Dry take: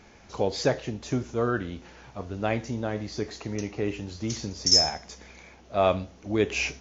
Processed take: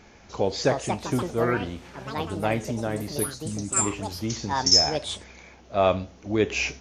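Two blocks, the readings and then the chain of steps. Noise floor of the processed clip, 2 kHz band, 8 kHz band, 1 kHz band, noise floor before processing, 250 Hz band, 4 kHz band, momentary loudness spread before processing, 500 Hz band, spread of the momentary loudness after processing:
-52 dBFS, +2.5 dB, n/a, +4.0 dB, -53 dBFS, +2.0 dB, +1.5 dB, 19 LU, +2.0 dB, 14 LU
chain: spectral gain 3.26–3.86, 320–3600 Hz -17 dB; echoes that change speed 0.428 s, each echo +6 st, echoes 2, each echo -6 dB; gain +1.5 dB

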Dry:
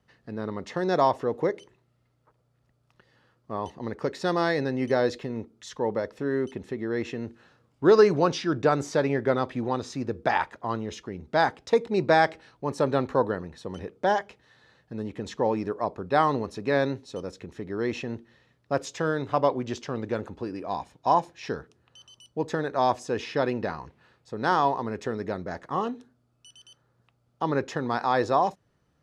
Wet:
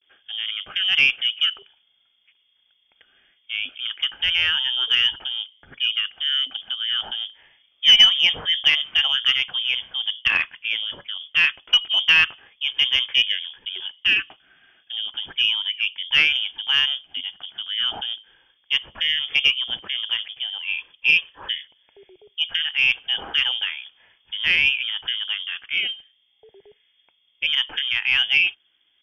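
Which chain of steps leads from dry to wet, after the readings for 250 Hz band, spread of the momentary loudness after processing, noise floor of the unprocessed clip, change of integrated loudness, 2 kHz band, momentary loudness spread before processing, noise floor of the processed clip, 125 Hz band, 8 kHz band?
under -20 dB, 12 LU, -70 dBFS, +7.5 dB, +13.0 dB, 13 LU, -65 dBFS, under -15 dB, n/a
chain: vibrato 0.36 Hz 56 cents; inverted band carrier 3400 Hz; added harmonics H 2 -21 dB, 8 -45 dB, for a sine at -6 dBFS; gain +4 dB

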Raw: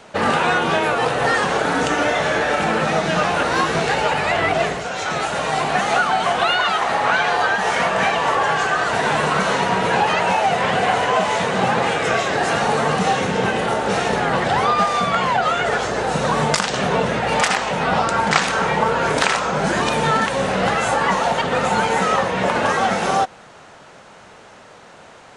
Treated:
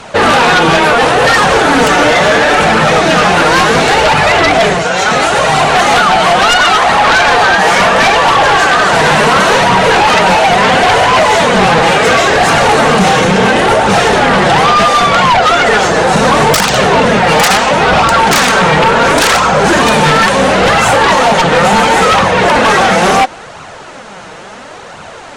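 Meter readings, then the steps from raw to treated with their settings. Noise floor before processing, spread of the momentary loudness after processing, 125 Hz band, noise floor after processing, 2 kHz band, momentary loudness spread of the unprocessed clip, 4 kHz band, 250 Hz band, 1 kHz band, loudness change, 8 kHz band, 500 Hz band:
-44 dBFS, 1 LU, +10.0 dB, -30 dBFS, +11.0 dB, 2 LU, +12.5 dB, +11.0 dB, +10.5 dB, +11.0 dB, +12.0 dB, +10.5 dB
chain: flange 0.72 Hz, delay 0.7 ms, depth 5.8 ms, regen +34%; sine folder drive 12 dB, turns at -6 dBFS; gain +2 dB

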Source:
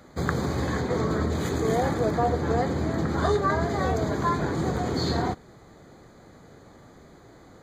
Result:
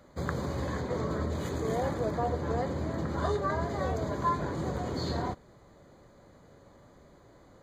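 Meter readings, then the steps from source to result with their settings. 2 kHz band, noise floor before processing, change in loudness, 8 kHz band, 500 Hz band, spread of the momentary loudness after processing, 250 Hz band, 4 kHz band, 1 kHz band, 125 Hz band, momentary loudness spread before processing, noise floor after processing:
-8.0 dB, -51 dBFS, -6.0 dB, -8.0 dB, -6.0 dB, 4 LU, -7.0 dB, -8.0 dB, -5.5 dB, -6.0 dB, 4 LU, -58 dBFS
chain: low shelf 86 Hz +5.5 dB; small resonant body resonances 570/1000/2900 Hz, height 8 dB, ringing for 40 ms; gain -8 dB

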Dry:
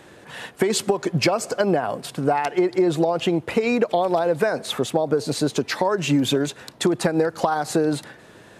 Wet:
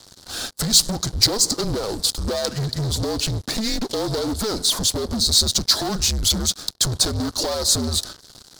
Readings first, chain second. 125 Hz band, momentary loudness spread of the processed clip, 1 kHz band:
+2.5 dB, 9 LU, -8.0 dB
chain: HPF 56 Hz 24 dB/oct; frequency shift -220 Hz; sample leveller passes 5; resonant high shelf 3300 Hz +10 dB, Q 3; gain -15 dB

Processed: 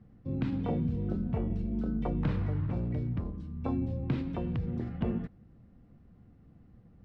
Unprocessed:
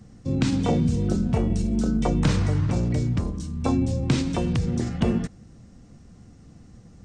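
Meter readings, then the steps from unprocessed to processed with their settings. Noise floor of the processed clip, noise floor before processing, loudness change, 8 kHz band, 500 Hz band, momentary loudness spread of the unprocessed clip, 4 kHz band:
-58 dBFS, -50 dBFS, -9.0 dB, under -35 dB, -9.5 dB, 6 LU, under -15 dB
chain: air absorption 440 m; gain -8.5 dB

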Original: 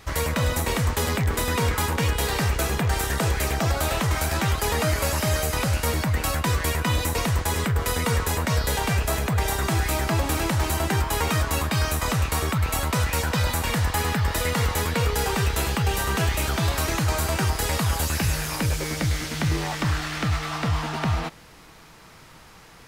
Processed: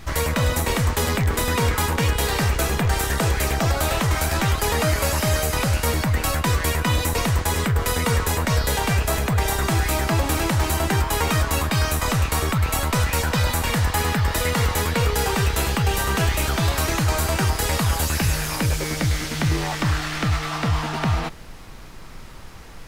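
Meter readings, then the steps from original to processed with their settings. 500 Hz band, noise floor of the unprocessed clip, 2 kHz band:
+2.5 dB, -48 dBFS, +2.5 dB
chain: added noise brown -42 dBFS; gain +2.5 dB

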